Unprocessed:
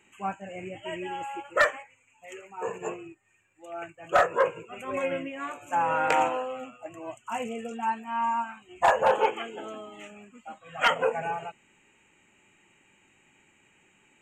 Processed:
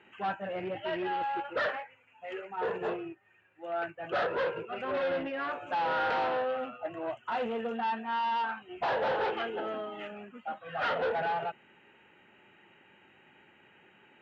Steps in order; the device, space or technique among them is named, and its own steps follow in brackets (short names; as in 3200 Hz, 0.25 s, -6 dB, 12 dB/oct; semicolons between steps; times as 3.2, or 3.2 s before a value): 8.35–9 dynamic EQ 960 Hz, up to +4 dB, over -35 dBFS, Q 1.9; guitar amplifier (tube stage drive 34 dB, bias 0.25; tone controls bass -6 dB, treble -12 dB; speaker cabinet 76–4400 Hz, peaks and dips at 290 Hz -4 dB, 1100 Hz -5 dB, 1500 Hz +3 dB, 2300 Hz -8 dB); gain +7.5 dB